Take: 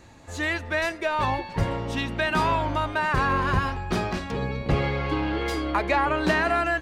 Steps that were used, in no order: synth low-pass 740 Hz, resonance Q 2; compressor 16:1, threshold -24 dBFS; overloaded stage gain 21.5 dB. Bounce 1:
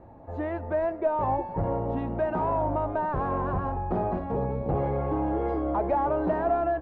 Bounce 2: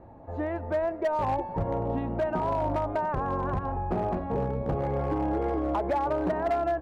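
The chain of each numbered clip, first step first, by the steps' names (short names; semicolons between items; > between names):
overloaded stage > compressor > synth low-pass; compressor > synth low-pass > overloaded stage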